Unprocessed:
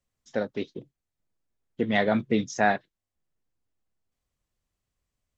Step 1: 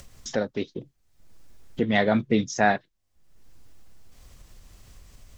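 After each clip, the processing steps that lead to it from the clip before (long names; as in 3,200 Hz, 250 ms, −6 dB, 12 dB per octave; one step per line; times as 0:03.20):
low-shelf EQ 72 Hz +9.5 dB
upward compression, threshold −28 dBFS
parametric band 5,300 Hz +3 dB 0.77 octaves
level +1.5 dB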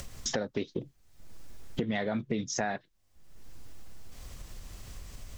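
in parallel at +2 dB: brickwall limiter −18 dBFS, peak gain reduction 11.5 dB
on the sum: downward compressor 8 to 1, threshold −26 dBFS, peak gain reduction 14.5 dB
level −2 dB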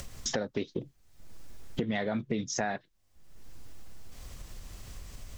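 no processing that can be heard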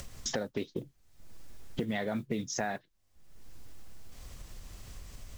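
noise that follows the level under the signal 31 dB
level −2 dB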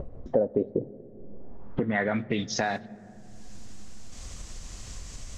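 pitch vibrato 0.76 Hz 33 cents
low-pass filter sweep 540 Hz → 7,100 Hz, 0:01.30–0:02.87
on a send at −18 dB: convolution reverb RT60 3.5 s, pre-delay 3 ms
on the sum: level +5.5 dB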